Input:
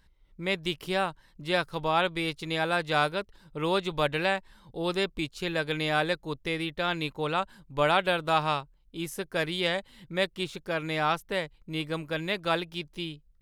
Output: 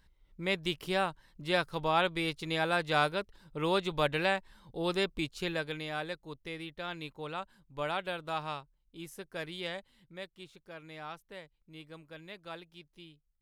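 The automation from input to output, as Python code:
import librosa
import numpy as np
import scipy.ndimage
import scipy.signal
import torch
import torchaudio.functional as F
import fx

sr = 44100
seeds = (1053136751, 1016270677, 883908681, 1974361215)

y = fx.gain(x, sr, db=fx.line((5.44, -2.5), (5.86, -10.5), (9.79, -10.5), (10.26, -17.0)))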